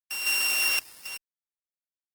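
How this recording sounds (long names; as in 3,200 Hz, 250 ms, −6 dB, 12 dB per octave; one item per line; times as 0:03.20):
a buzz of ramps at a fixed pitch in blocks of 16 samples
sample-and-hold tremolo 3.8 Hz, depth 95%
a quantiser's noise floor 8 bits, dither none
Opus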